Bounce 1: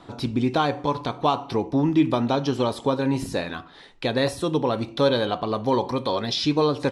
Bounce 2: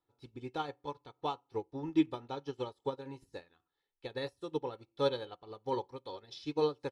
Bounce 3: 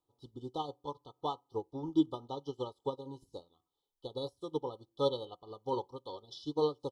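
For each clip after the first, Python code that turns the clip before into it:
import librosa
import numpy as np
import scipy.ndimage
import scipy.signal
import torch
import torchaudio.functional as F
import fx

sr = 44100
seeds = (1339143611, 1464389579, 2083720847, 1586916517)

y1 = x + 0.57 * np.pad(x, (int(2.3 * sr / 1000.0), 0))[:len(x)]
y1 = fx.upward_expand(y1, sr, threshold_db=-35.0, expansion=2.5)
y1 = F.gain(torch.from_numpy(y1), -8.0).numpy()
y2 = fx.brickwall_bandstop(y1, sr, low_hz=1300.0, high_hz=2900.0)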